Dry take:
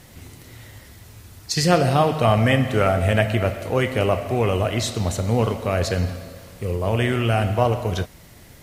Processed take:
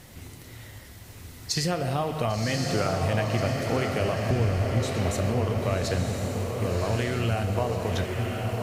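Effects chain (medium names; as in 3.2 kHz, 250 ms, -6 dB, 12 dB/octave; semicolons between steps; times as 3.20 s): 4.30–4.83 s: RIAA curve playback; compression, threshold -22 dBFS, peak gain reduction 14 dB; echo that smears into a reverb 1078 ms, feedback 52%, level -3 dB; trim -1.5 dB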